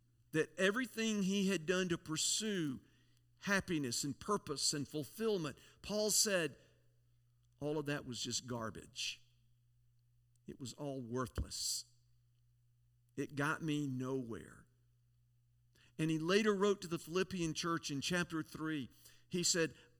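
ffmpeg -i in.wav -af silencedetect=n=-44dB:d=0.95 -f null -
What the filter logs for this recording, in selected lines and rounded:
silence_start: 6.47
silence_end: 7.62 | silence_duration: 1.14
silence_start: 9.14
silence_end: 10.49 | silence_duration: 1.35
silence_start: 11.81
silence_end: 13.18 | silence_duration: 1.37
silence_start: 14.48
silence_end: 15.99 | silence_duration: 1.51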